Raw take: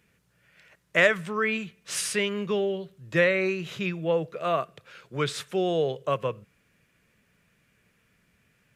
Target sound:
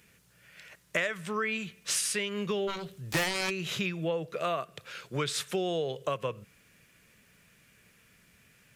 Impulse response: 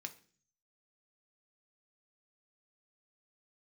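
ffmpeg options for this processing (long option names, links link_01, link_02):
-filter_complex "[0:a]highshelf=frequency=2900:gain=8,acompressor=threshold=-31dB:ratio=5,asplit=3[link_01][link_02][link_03];[link_01]afade=type=out:start_time=2.67:duration=0.02[link_04];[link_02]aeval=exprs='0.0794*(cos(1*acos(clip(val(0)/0.0794,-1,1)))-cos(1*PI/2))+0.0282*(cos(7*acos(clip(val(0)/0.0794,-1,1)))-cos(7*PI/2))':channel_layout=same,afade=type=in:start_time=2.67:duration=0.02,afade=type=out:start_time=3.49:duration=0.02[link_05];[link_03]afade=type=in:start_time=3.49:duration=0.02[link_06];[link_04][link_05][link_06]amix=inputs=3:normalize=0,volume=2.5dB"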